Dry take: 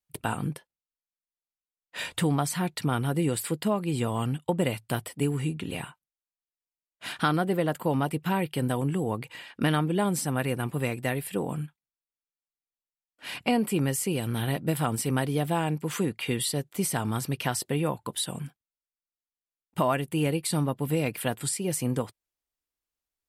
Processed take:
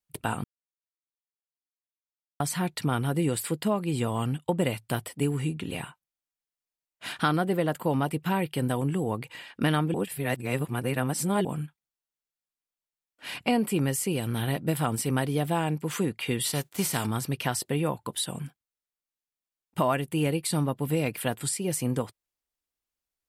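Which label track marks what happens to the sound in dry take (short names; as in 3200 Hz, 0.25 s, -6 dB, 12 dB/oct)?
0.440000	2.400000	mute
9.940000	11.450000	reverse
16.440000	17.050000	spectral whitening exponent 0.6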